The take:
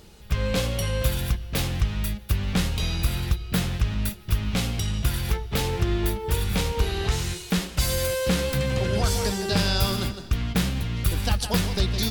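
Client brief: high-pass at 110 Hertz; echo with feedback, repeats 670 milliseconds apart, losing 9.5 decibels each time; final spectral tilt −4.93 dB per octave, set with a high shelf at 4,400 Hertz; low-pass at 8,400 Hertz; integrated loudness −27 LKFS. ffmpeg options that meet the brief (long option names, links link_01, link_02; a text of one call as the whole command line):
ffmpeg -i in.wav -af "highpass=110,lowpass=8400,highshelf=frequency=4400:gain=-9,aecho=1:1:670|1340|2010|2680:0.335|0.111|0.0365|0.012,volume=1.5dB" out.wav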